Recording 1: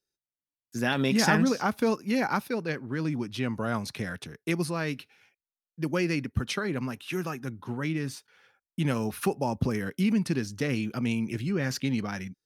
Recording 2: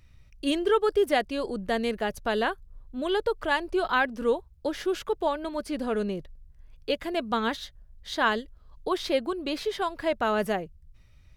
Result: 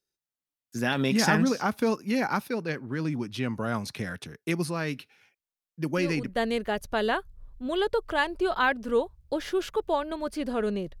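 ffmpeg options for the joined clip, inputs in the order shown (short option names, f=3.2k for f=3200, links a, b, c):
-filter_complex "[1:a]asplit=2[a][b];[0:a]apad=whole_dur=11,atrim=end=11,atrim=end=6.362[c];[b]atrim=start=1.688:end=6.33[d];[a]atrim=start=1.29:end=1.69,asetpts=PTS-STARTPTS,volume=-6dB,afade=t=in:d=0.004:c=hsin,afade=t=out:st=0.396:d=0.004:c=hsin,adelay=5960[e];[c][d]acrossfade=d=0.004:c1=hsin:c2=hsin[f];[f][e]amix=inputs=2:normalize=0"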